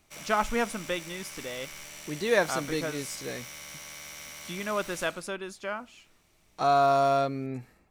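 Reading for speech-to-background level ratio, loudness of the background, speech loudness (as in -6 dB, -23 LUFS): 12.5 dB, -42.0 LUFS, -29.5 LUFS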